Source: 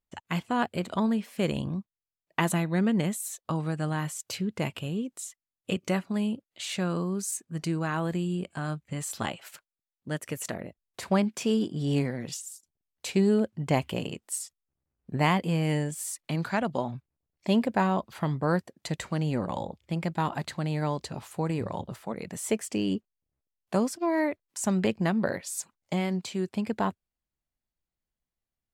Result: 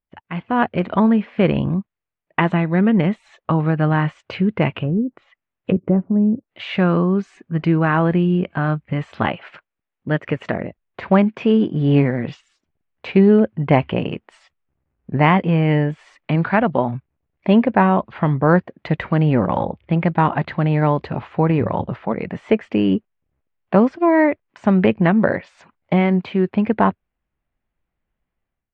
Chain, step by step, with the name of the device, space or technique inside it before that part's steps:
0:04.80–0:06.49: treble cut that deepens with the level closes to 410 Hz, closed at −28.5 dBFS
action camera in a waterproof case (low-pass filter 2,600 Hz 24 dB per octave; automatic gain control gain up to 13 dB; AAC 64 kbit/s 48,000 Hz)

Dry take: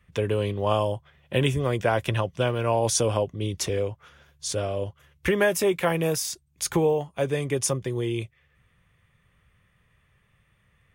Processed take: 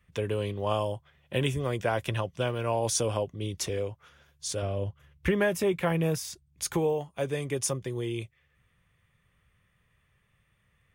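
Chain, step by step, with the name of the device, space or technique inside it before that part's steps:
0:04.62–0:06.63: bass and treble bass +7 dB, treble −6 dB
exciter from parts (in parallel at −8.5 dB: high-pass filter 4,600 Hz 6 dB per octave + soft clipping −27 dBFS, distortion −10 dB)
on the sum: level −5 dB

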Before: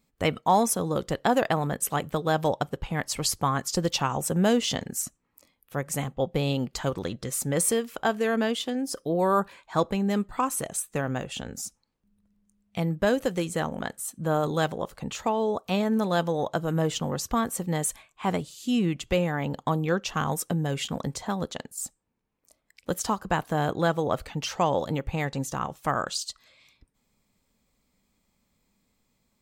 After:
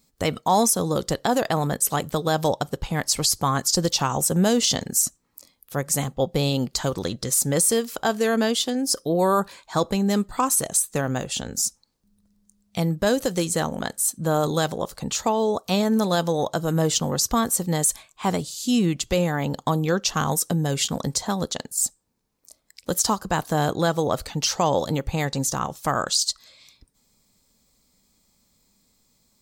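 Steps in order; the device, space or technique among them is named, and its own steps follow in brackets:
over-bright horn tweeter (high shelf with overshoot 3,500 Hz +7 dB, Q 1.5; brickwall limiter −14 dBFS, peak gain reduction 8.5 dB)
level +4 dB

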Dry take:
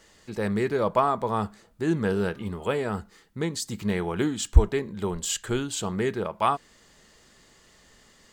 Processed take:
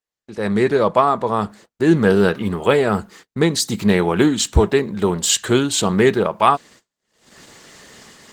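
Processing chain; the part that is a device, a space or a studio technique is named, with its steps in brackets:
dynamic equaliser 3,900 Hz, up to +6 dB, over −55 dBFS, Q 7.6
video call (high-pass filter 120 Hz 12 dB per octave; automatic gain control gain up to 16 dB; noise gate −42 dBFS, range −38 dB; Opus 16 kbit/s 48,000 Hz)

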